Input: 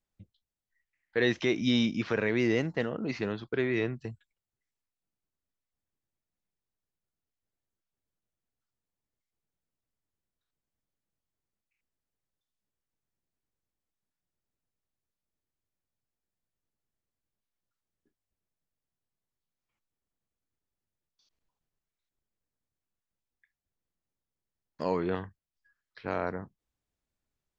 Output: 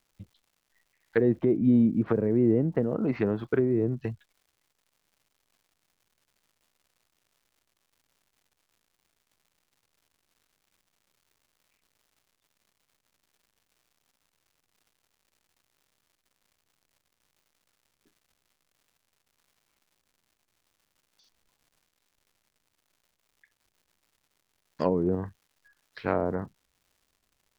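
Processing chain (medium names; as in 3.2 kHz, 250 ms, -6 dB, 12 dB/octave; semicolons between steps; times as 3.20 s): low-pass that closes with the level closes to 410 Hz, closed at -25.5 dBFS; crackle 250 per s -62 dBFS; trim +6.5 dB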